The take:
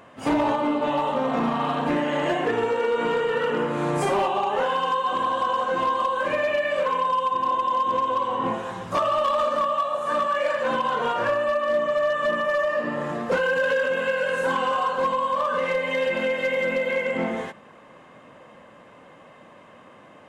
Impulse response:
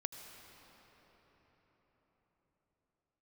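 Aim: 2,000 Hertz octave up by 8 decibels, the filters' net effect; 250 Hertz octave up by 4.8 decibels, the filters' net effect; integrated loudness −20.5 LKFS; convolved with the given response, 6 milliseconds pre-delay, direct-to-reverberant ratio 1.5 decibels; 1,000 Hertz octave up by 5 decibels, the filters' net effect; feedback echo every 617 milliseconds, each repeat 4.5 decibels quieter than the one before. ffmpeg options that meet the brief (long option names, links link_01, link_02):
-filter_complex "[0:a]equalizer=frequency=250:width_type=o:gain=5.5,equalizer=frequency=1000:width_type=o:gain=3,equalizer=frequency=2000:width_type=o:gain=9,aecho=1:1:617|1234|1851|2468|3085|3702|4319|4936|5553:0.596|0.357|0.214|0.129|0.0772|0.0463|0.0278|0.0167|0.01,asplit=2[link_01][link_02];[1:a]atrim=start_sample=2205,adelay=6[link_03];[link_02][link_03]afir=irnorm=-1:irlink=0,volume=-0.5dB[link_04];[link_01][link_04]amix=inputs=2:normalize=0,volume=-5dB"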